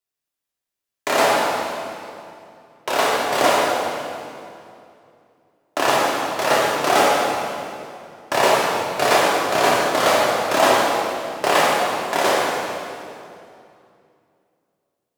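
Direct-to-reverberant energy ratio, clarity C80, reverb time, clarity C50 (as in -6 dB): -6.0 dB, -0.5 dB, 2.5 s, -2.0 dB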